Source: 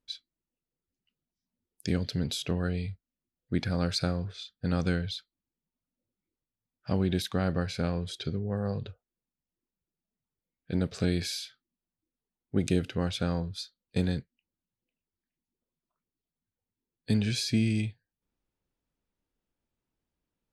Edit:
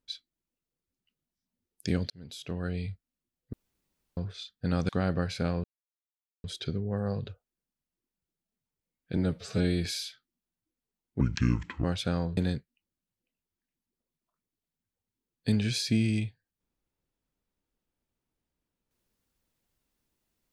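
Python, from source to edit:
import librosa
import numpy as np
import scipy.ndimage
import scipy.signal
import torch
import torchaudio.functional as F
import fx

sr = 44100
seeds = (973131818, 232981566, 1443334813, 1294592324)

y = fx.edit(x, sr, fx.fade_in_span(start_s=2.1, length_s=0.81),
    fx.room_tone_fill(start_s=3.53, length_s=0.64),
    fx.cut(start_s=4.89, length_s=2.39),
    fx.insert_silence(at_s=8.03, length_s=0.8),
    fx.stretch_span(start_s=10.76, length_s=0.45, factor=1.5),
    fx.speed_span(start_s=12.57, length_s=0.42, speed=0.66),
    fx.cut(start_s=13.52, length_s=0.47), tone=tone)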